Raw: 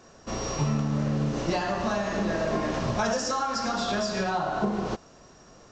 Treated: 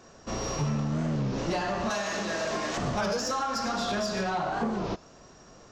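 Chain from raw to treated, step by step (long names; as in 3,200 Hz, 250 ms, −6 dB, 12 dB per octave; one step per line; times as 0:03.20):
0:01.90–0:02.78: spectral tilt +3 dB per octave
soft clipping −22 dBFS, distortion −17 dB
wow of a warped record 33 1/3 rpm, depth 160 cents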